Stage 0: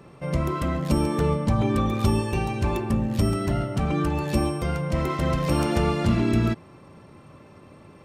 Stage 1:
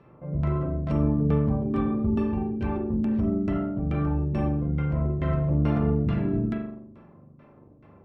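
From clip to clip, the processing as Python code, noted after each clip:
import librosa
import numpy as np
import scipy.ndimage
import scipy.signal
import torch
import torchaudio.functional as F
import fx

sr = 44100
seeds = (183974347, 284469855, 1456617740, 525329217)

y = fx.rev_spring(x, sr, rt60_s=1.0, pass_ms=(41,), chirp_ms=70, drr_db=-0.5)
y = fx.filter_lfo_lowpass(y, sr, shape='saw_down', hz=2.3, low_hz=280.0, high_hz=3000.0, q=0.75)
y = F.gain(torch.from_numpy(y), -7.0).numpy()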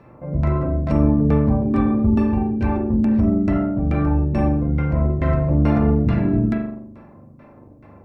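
y = fx.graphic_eq_31(x, sr, hz=(160, 400, 1250, 3150), db=(-8, -6, -4, -9))
y = F.gain(torch.from_numpy(y), 9.0).numpy()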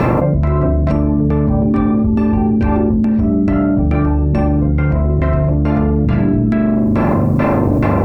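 y = fx.env_flatten(x, sr, amount_pct=100)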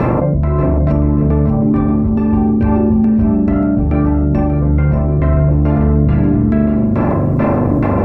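y = fx.high_shelf(x, sr, hz=2500.0, db=-10.0)
y = fx.echo_feedback(y, sr, ms=586, feedback_pct=34, wet_db=-9.0)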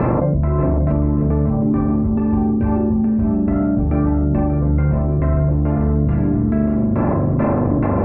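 y = scipy.signal.sosfilt(scipy.signal.butter(2, 2000.0, 'lowpass', fs=sr, output='sos'), x)
y = fx.rider(y, sr, range_db=10, speed_s=0.5)
y = F.gain(torch.from_numpy(y), -4.0).numpy()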